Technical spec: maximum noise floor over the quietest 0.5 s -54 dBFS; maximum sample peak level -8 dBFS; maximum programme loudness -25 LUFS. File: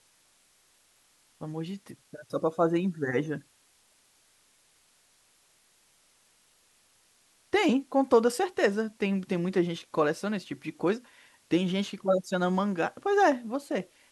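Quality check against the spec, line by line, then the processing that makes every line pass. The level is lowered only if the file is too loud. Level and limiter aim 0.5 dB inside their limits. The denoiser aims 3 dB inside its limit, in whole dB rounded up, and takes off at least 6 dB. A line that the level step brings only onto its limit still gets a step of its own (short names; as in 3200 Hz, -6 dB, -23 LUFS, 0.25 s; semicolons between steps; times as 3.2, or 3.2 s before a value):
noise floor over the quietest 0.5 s -65 dBFS: OK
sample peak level -9.5 dBFS: OK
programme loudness -28.5 LUFS: OK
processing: none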